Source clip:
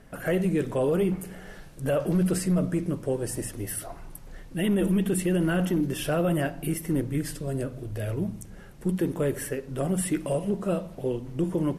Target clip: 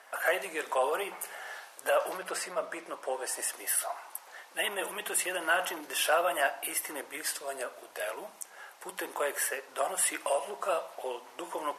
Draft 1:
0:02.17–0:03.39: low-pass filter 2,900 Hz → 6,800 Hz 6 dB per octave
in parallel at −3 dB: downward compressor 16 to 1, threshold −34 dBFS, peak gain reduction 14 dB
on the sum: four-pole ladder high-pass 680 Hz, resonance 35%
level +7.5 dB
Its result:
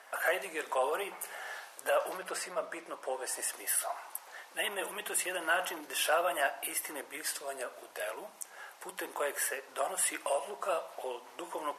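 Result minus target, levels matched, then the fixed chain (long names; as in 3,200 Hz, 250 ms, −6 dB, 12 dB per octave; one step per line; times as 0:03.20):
downward compressor: peak gain reduction +10.5 dB
0:02.17–0:03.39: low-pass filter 2,900 Hz → 6,800 Hz 6 dB per octave
in parallel at −3 dB: downward compressor 16 to 1, threshold −22.5 dBFS, peak gain reduction 3.5 dB
on the sum: four-pole ladder high-pass 680 Hz, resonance 35%
level +7.5 dB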